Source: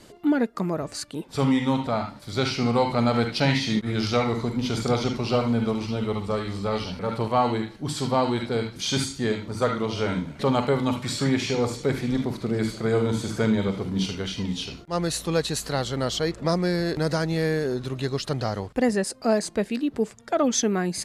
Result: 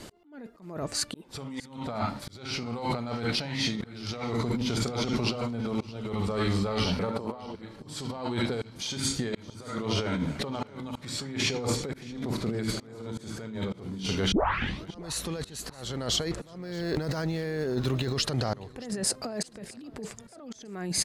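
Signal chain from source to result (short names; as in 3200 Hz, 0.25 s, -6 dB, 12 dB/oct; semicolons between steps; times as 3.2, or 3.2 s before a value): 7.1–7.55 graphic EQ 250/500/1000 Hz +8/+8/+6 dB; negative-ratio compressor -30 dBFS, ratio -1; auto swell 0.492 s; 14.32 tape start 0.55 s; feedback echo 0.622 s, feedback 36%, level -21.5 dB; 16.57–18.17 decimation joined by straight lines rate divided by 2×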